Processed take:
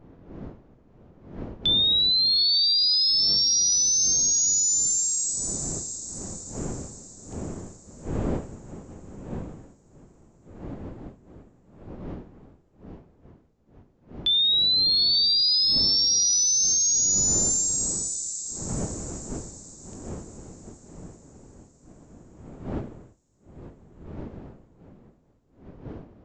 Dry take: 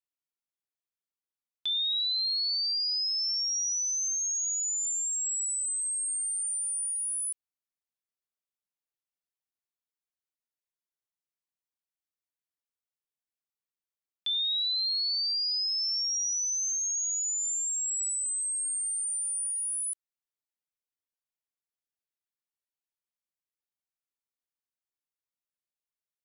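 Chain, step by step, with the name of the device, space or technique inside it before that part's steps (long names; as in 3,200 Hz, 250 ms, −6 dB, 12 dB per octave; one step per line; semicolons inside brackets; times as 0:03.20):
feedback delay with all-pass diffusion 740 ms, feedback 41%, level −10 dB
smartphone video outdoors (wind on the microphone 300 Hz −47 dBFS; automatic gain control gain up to 5.5 dB; level +2.5 dB; AAC 64 kbit/s 16,000 Hz)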